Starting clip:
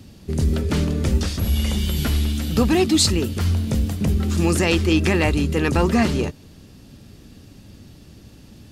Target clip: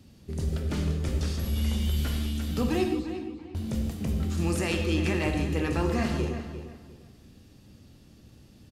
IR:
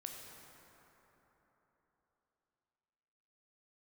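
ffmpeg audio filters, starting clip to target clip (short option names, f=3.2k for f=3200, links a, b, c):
-filter_complex "[0:a]asettb=1/sr,asplit=3[a][b][c];[a]atrim=end=2.884[d];[b]atrim=start=2.88:end=3.55,asetpts=PTS-STARTPTS,afade=t=in:d=0.004:c=qsin,afade=t=out:st=0.666:d=0.004:c=qsin,asplit=3[e][f][g];[e]bandpass=f=300:t=q:w=8,volume=0dB[h];[f]bandpass=f=870:t=q:w=8,volume=-6dB[i];[g]bandpass=f=2.24k:t=q:w=8,volume=-9dB[j];[h][i][j]amix=inputs=3:normalize=0[k];[c]atrim=start=3.546[l];[d][k]acrossfade=d=0.004:c1=hsin:c2=qsin[m];[m][l]acrossfade=d=0.004:c1=qsin:c2=hsin,asplit=2[n][o];[o]adelay=349,lowpass=f=3.2k:p=1,volume=-10dB,asplit=2[p][q];[q]adelay=349,lowpass=f=3.2k:p=1,volume=0.27,asplit=2[r][s];[s]adelay=349,lowpass=f=3.2k:p=1,volume=0.27[t];[n][p][r][t]amix=inputs=4:normalize=0[u];[1:a]atrim=start_sample=2205,afade=t=out:st=0.23:d=0.01,atrim=end_sample=10584[v];[u][v]afir=irnorm=-1:irlink=0,volume=-5dB"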